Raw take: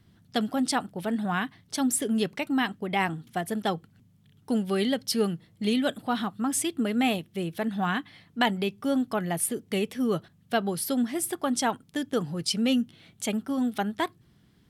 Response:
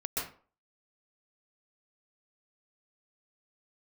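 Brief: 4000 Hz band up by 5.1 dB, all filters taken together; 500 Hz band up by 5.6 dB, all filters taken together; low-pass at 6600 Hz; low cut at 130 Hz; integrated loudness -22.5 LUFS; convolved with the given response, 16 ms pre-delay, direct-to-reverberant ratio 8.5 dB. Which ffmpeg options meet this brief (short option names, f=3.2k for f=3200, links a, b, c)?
-filter_complex "[0:a]highpass=130,lowpass=6.6k,equalizer=f=500:t=o:g=7,equalizer=f=4k:t=o:g=7.5,asplit=2[a][b];[1:a]atrim=start_sample=2205,adelay=16[c];[b][c]afir=irnorm=-1:irlink=0,volume=-13dB[d];[a][d]amix=inputs=2:normalize=0,volume=2.5dB"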